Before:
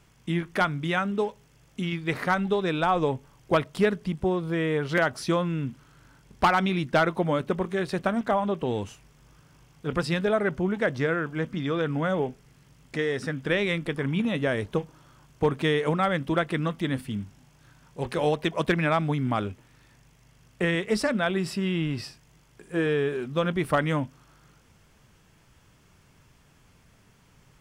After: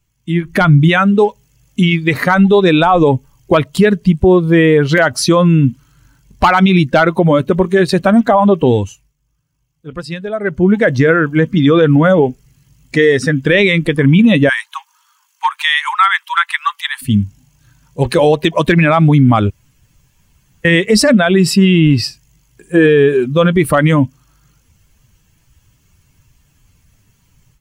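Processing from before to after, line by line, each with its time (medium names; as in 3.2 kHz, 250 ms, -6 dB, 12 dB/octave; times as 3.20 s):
0.44–0.89 s: bass shelf 250 Hz +8.5 dB
8.68–10.82 s: dip -12 dB, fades 0.47 s
14.49–17.02 s: steep high-pass 840 Hz 96 dB/octave
19.50–20.65 s: room tone
whole clip: expander on every frequency bin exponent 1.5; level rider gain up to 11.5 dB; loudness maximiser +13 dB; trim -1 dB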